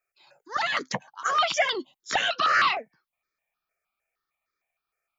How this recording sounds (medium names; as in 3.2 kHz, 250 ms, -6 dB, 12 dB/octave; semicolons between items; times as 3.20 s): notches that jump at a steady rate 6.5 Hz 970–2800 Hz